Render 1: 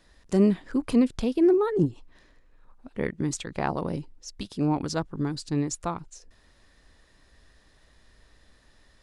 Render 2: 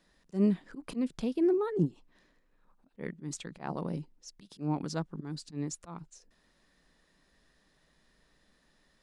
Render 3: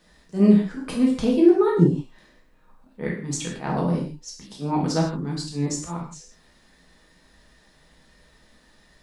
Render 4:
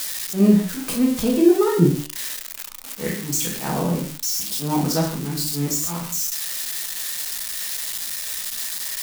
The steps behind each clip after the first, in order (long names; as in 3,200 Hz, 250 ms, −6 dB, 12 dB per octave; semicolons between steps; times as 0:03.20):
volume swells 129 ms; low shelf with overshoot 130 Hz −6 dB, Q 3; level −7.5 dB
reverb whose tail is shaped and stops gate 190 ms falling, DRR −3 dB; level +7 dB
spike at every zero crossing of −19 dBFS; flanger 0.29 Hz, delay 9 ms, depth 5.7 ms, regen +82%; level +5.5 dB